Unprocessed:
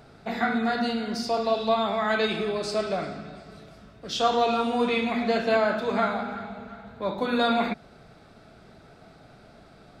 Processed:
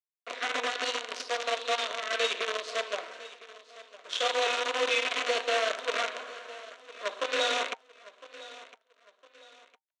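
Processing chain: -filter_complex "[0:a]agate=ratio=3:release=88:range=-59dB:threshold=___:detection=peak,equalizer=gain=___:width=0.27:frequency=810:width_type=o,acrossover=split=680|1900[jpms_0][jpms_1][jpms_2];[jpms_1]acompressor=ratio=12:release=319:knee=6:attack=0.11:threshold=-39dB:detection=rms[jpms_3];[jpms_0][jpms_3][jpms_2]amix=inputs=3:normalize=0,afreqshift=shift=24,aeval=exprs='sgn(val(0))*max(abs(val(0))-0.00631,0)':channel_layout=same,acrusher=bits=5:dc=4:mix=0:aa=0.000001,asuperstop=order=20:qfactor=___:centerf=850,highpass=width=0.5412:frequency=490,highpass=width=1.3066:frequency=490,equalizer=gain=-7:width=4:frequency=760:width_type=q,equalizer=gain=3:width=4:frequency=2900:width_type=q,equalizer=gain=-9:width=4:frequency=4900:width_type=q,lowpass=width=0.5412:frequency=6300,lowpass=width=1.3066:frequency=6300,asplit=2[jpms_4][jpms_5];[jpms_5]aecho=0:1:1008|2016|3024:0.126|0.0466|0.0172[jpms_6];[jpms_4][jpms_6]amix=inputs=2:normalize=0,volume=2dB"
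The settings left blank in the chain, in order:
-40dB, 3, 6.8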